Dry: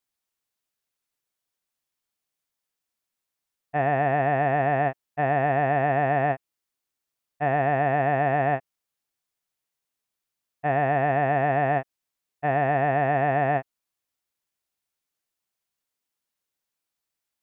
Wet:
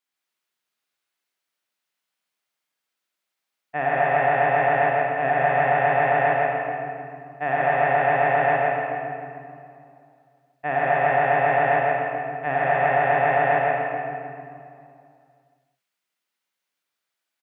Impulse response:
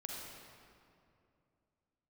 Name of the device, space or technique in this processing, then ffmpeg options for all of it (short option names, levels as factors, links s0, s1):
PA in a hall: -filter_complex "[0:a]highpass=160,equalizer=f=2100:t=o:w=2.4:g=7.5,aecho=1:1:160:0.631[s0];[1:a]atrim=start_sample=2205[s1];[s0][s1]afir=irnorm=-1:irlink=0"